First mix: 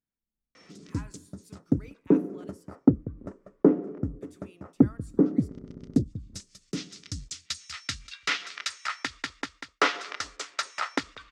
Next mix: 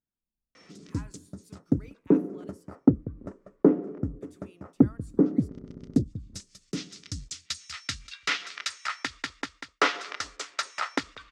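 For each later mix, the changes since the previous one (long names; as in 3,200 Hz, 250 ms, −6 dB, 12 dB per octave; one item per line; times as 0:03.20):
speech: send −10.0 dB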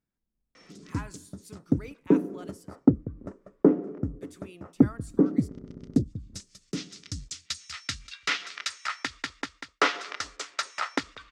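speech +8.5 dB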